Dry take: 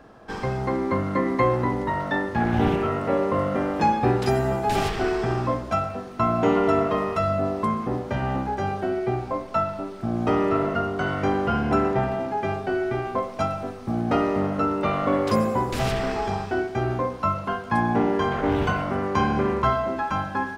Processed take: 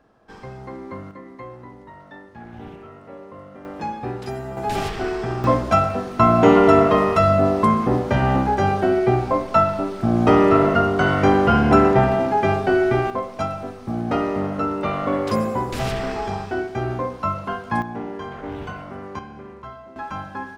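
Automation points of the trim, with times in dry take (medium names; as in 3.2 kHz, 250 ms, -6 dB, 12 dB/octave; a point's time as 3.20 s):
-10 dB
from 1.11 s -17 dB
from 3.65 s -8 dB
from 4.57 s -1 dB
from 5.44 s +7.5 dB
from 13.10 s 0 dB
from 17.82 s -9 dB
from 19.19 s -16.5 dB
from 19.96 s -5 dB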